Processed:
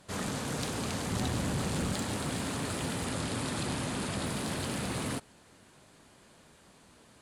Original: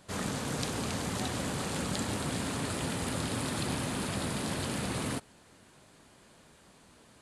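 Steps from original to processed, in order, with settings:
0:01.10–0:01.92: low-shelf EQ 200 Hz +8.5 dB
asymmetric clip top −29.5 dBFS
0:03.06–0:04.26: low-pass filter 11,000 Hz 24 dB per octave

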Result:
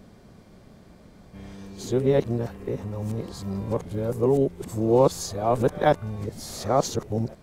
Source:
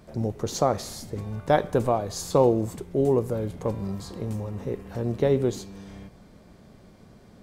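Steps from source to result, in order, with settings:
played backwards from end to start
level +1 dB

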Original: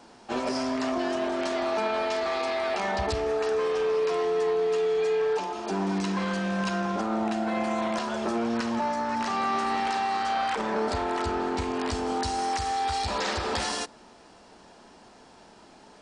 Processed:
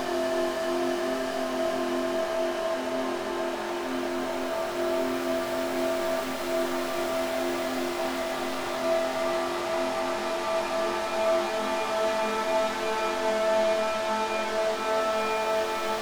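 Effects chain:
stylus tracing distortion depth 0.41 ms
extreme stretch with random phases 17×, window 0.50 s, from 0:01.08

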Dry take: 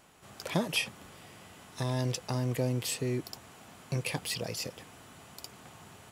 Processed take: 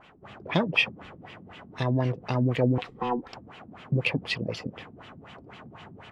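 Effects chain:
0:02.78–0:03.33: ring modulation 620 Hz
auto-filter low-pass sine 4 Hz 220–3,200 Hz
level +4.5 dB

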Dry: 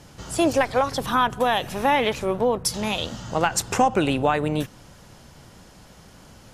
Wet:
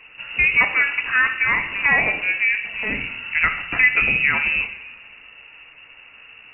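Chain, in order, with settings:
coupled-rooms reverb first 0.73 s, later 2.4 s, from −17 dB, DRR 5.5 dB
voice inversion scrambler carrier 2,800 Hz
level +1.5 dB

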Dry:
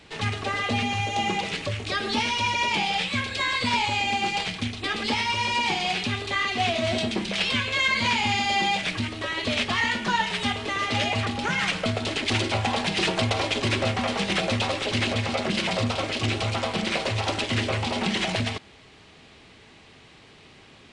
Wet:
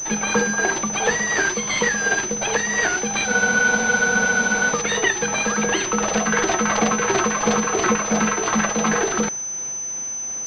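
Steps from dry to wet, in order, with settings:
amplitude tremolo 1.4 Hz, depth 39%
background noise violet −45 dBFS
wrong playback speed 7.5 ips tape played at 15 ips
frozen spectrum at 0:03.30, 1.41 s
switching amplifier with a slow clock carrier 6,100 Hz
level +8.5 dB

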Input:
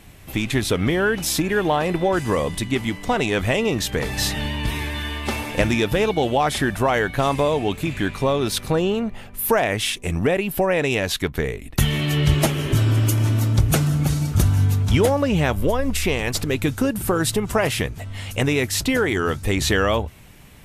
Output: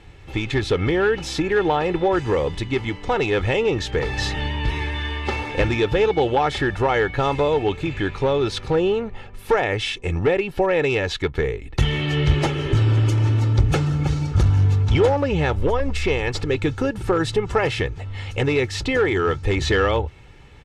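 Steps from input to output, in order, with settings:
comb filter 2.3 ms, depth 55%
asymmetric clip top −13 dBFS
high-frequency loss of the air 130 metres

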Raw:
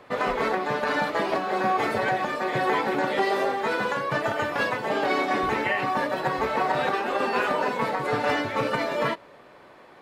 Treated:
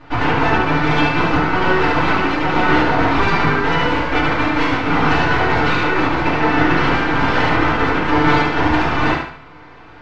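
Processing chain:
parametric band 1,100 Hz −4.5 dB 0.27 octaves
full-wave rectification
high-frequency loss of the air 180 metres
on a send: feedback echo with a high-pass in the loop 72 ms, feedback 40%, high-pass 450 Hz, level −5 dB
on the sum: feedback delay network reverb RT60 0.45 s, low-frequency decay 1.25×, high-frequency decay 0.45×, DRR −8 dB
level +4.5 dB

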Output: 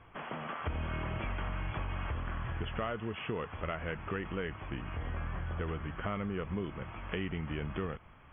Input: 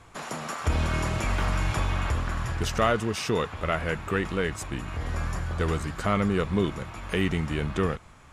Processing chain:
downward compressor 4 to 1, threshold −28 dBFS, peak gain reduction 9 dB
linear-phase brick-wall low-pass 3,400 Hz
level −5 dB

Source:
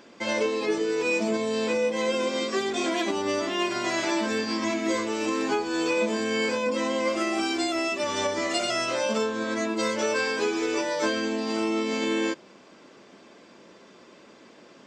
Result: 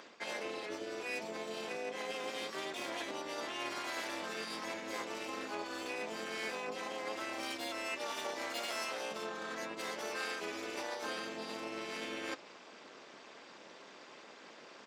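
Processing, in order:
stylus tracing distortion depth 0.098 ms
reversed playback
downward compressor 8 to 1, threshold −35 dBFS, peak gain reduction 14 dB
reversed playback
pitch-shifted copies added −7 semitones −15 dB, −4 semitones −6 dB
amplitude modulation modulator 230 Hz, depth 65%
meter weighting curve A
level +2 dB

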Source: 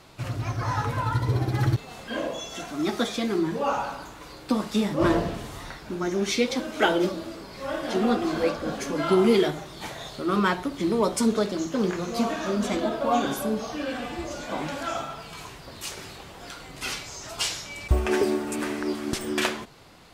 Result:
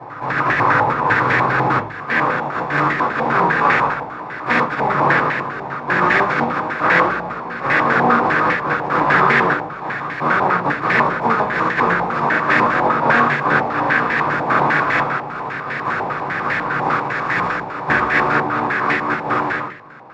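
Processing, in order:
compressing power law on the bin magnitudes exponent 0.21
camcorder AGC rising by 6.6 dB per second
brickwall limiter −13.5 dBFS, peak gain reduction 7.5 dB
granular cloud, spray 35 ms, pitch spread up and down by 0 semitones
backwards echo 585 ms −18 dB
convolution reverb RT60 0.40 s, pre-delay 3 ms, DRR −9 dB
low-pass on a step sequencer 10 Hz 860–1,800 Hz
level −1.5 dB

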